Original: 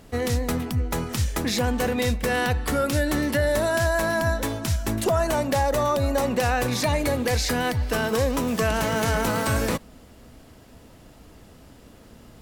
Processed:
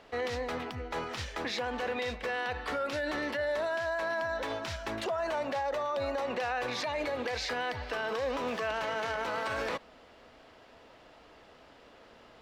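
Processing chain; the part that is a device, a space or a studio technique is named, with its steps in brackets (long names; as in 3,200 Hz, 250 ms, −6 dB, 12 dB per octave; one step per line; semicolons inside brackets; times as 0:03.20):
DJ mixer with the lows and highs turned down (three-way crossover with the lows and the highs turned down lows −18 dB, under 410 Hz, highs −24 dB, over 4,700 Hz; brickwall limiter −25.5 dBFS, peak gain reduction 10.5 dB)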